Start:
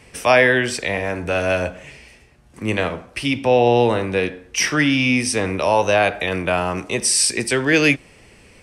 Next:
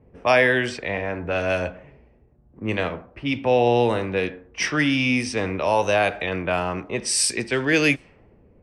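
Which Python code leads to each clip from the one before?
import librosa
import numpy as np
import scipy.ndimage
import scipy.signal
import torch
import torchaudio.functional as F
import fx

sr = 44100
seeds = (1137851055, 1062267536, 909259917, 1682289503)

y = fx.env_lowpass(x, sr, base_hz=520.0, full_db=-13.0)
y = y * 10.0 ** (-3.5 / 20.0)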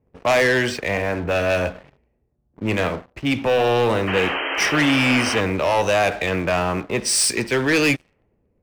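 y = fx.leveller(x, sr, passes=3)
y = fx.spec_paint(y, sr, seeds[0], shape='noise', start_s=4.07, length_s=1.34, low_hz=270.0, high_hz=3200.0, level_db=-19.0)
y = y * 10.0 ** (-6.0 / 20.0)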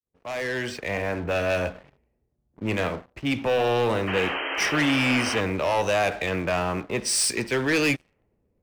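y = fx.fade_in_head(x, sr, length_s=1.06)
y = y * 10.0 ** (-4.5 / 20.0)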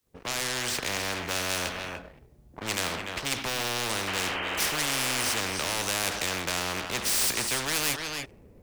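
y = x + 10.0 ** (-19.0 / 20.0) * np.pad(x, (int(294 * sr / 1000.0), 0))[:len(x)]
y = fx.spectral_comp(y, sr, ratio=4.0)
y = y * 10.0 ** (3.5 / 20.0)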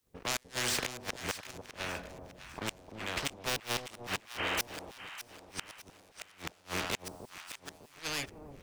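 y = fx.gate_flip(x, sr, shuts_db=-17.0, range_db=-36)
y = fx.echo_alternate(y, sr, ms=302, hz=860.0, feedback_pct=63, wet_db=-8.0)
y = y * 10.0 ** (-1.5 / 20.0)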